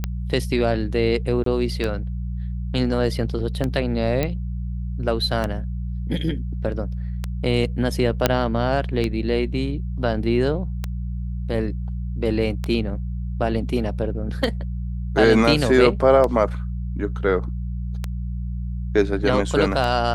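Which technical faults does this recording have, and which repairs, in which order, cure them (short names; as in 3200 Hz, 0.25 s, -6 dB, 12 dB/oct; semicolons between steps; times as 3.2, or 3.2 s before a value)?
hum 60 Hz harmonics 3 -27 dBFS
tick 33 1/3 rpm -11 dBFS
1.44–1.46 gap 23 ms
4.23 pop -9 dBFS
8.26 pop -1 dBFS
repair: de-click; de-hum 60 Hz, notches 3; interpolate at 1.44, 23 ms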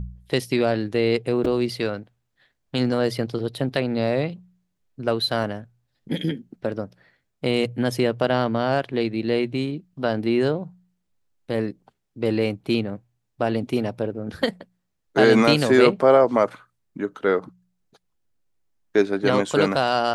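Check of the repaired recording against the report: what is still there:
none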